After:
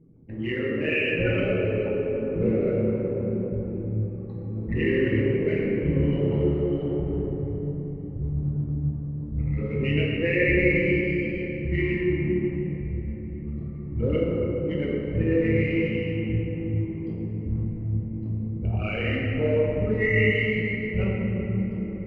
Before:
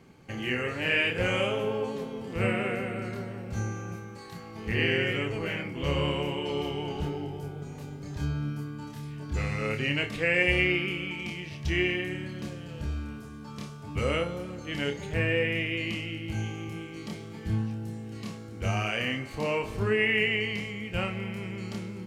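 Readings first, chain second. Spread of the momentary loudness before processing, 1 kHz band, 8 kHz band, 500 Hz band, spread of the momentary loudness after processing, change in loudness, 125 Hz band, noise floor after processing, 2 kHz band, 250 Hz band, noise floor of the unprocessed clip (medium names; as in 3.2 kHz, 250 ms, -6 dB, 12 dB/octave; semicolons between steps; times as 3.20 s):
14 LU, -8.0 dB, under -20 dB, +6.0 dB, 9 LU, +4.0 dB, +7.0 dB, -34 dBFS, 0.0 dB, +7.5 dB, -43 dBFS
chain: resonances exaggerated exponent 3; in parallel at -7 dB: crossover distortion -39 dBFS; on the sum: tape spacing loss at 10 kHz 25 dB; flange 1.7 Hz, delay 6 ms, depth 6.5 ms, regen -55%; on a send: tape echo 395 ms, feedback 76%, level -23 dB, low-pass 3.5 kHz; on the sum: simulated room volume 210 m³, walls hard, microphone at 0.68 m; trim +3.5 dB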